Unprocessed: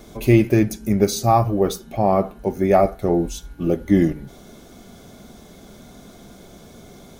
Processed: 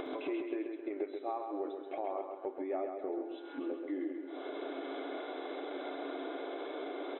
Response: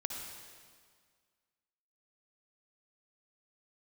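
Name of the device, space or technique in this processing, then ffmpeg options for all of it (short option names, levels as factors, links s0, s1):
upward and downward compression: -filter_complex "[0:a]acrossover=split=3800[s0][s1];[s1]acompressor=threshold=0.002:ratio=4:attack=1:release=60[s2];[s0][s2]amix=inputs=2:normalize=0,aemphasis=mode=reproduction:type=75kf,afftfilt=real='re*between(b*sr/4096,260,4000)':imag='im*between(b*sr/4096,260,4000)':win_size=4096:overlap=0.75,acompressor=mode=upward:threshold=0.0794:ratio=2.5,acompressor=threshold=0.00398:ratio=4,aecho=1:1:133|266|399|532|665|798|931:0.531|0.276|0.144|0.0746|0.0388|0.0202|0.0105,volume=2"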